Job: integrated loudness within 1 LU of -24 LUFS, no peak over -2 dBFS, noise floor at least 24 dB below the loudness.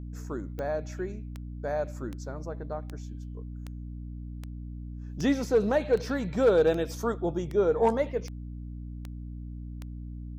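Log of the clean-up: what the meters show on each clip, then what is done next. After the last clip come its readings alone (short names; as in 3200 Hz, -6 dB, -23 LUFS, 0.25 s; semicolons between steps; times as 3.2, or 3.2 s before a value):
clicks 13; hum 60 Hz; harmonics up to 300 Hz; hum level -36 dBFS; loudness -28.5 LUFS; peak -14.0 dBFS; loudness target -24.0 LUFS
-> de-click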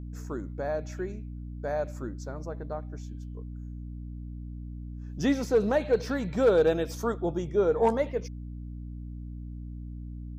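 clicks 0; hum 60 Hz; harmonics up to 300 Hz; hum level -36 dBFS
-> notches 60/120/180/240/300 Hz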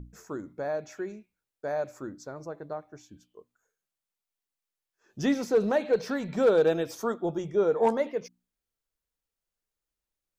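hum none; loudness -28.0 LUFS; peak -14.0 dBFS; loudness target -24.0 LUFS
-> gain +4 dB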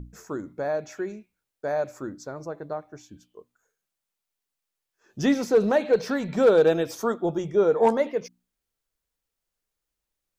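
loudness -24.0 LUFS; peak -10.0 dBFS; noise floor -85 dBFS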